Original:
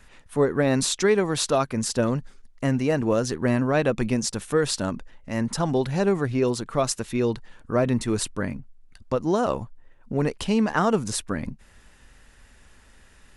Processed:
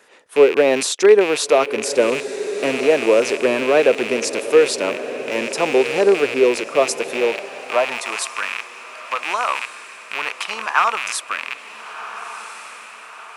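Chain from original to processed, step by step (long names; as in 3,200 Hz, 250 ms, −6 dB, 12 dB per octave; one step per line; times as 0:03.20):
loose part that buzzes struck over −39 dBFS, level −17 dBFS
feedback delay with all-pass diffusion 1,391 ms, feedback 51%, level −12 dB
high-pass filter sweep 430 Hz → 1,100 Hz, 0:06.87–0:08.38
level +3 dB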